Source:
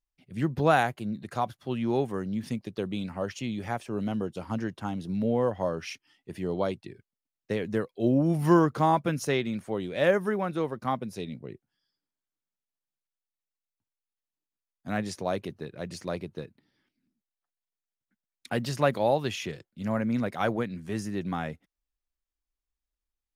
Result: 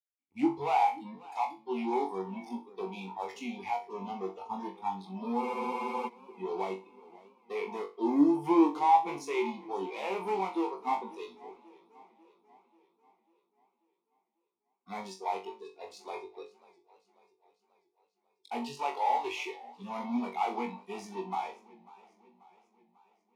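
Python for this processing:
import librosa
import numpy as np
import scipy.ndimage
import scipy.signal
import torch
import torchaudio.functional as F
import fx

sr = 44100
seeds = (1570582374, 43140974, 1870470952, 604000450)

p1 = fx.fuzz(x, sr, gain_db=42.0, gate_db=-40.0)
p2 = x + (p1 * librosa.db_to_amplitude(-8.0))
p3 = fx.dynamic_eq(p2, sr, hz=640.0, q=1.0, threshold_db=-32.0, ratio=4.0, max_db=7)
p4 = fx.noise_reduce_blind(p3, sr, reduce_db=26)
p5 = fx.vowel_filter(p4, sr, vowel='u')
p6 = fx.bass_treble(p5, sr, bass_db=-10, treble_db=9)
p7 = fx.room_flutter(p6, sr, wall_m=3.6, rt60_s=0.28)
p8 = fx.spec_freeze(p7, sr, seeds[0], at_s=5.44, hold_s=0.63)
y = fx.echo_warbled(p8, sr, ms=541, feedback_pct=54, rate_hz=2.8, cents=119, wet_db=-21.0)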